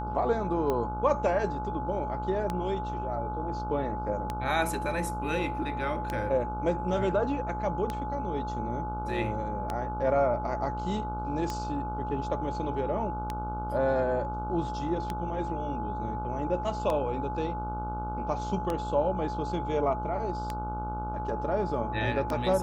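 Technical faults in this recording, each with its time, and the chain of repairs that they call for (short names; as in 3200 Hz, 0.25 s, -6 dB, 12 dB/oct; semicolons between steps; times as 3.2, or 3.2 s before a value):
buzz 60 Hz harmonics 25 -36 dBFS
tick 33 1/3 rpm -17 dBFS
tone 850 Hz -34 dBFS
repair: de-click; de-hum 60 Hz, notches 25; notch 850 Hz, Q 30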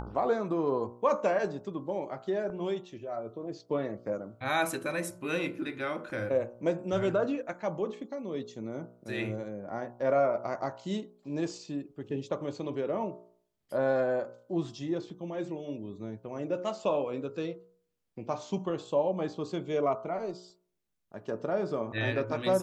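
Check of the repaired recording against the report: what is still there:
none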